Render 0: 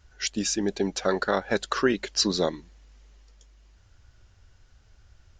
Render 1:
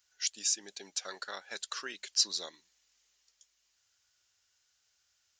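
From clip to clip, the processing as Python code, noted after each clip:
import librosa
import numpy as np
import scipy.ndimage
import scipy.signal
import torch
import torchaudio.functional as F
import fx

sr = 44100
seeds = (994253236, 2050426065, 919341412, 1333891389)

y = np.diff(x, prepend=0.0)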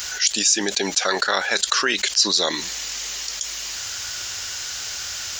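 y = fx.env_flatten(x, sr, amount_pct=70)
y = y * 10.0 ** (8.5 / 20.0)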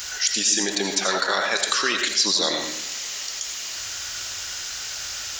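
y = fx.rev_freeverb(x, sr, rt60_s=0.68, hf_ratio=0.7, predelay_ms=45, drr_db=3.0)
y = y * 10.0 ** (-3.0 / 20.0)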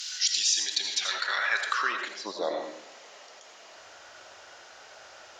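y = fx.filter_sweep_bandpass(x, sr, from_hz=4100.0, to_hz=620.0, start_s=0.84, end_s=2.38, q=1.7)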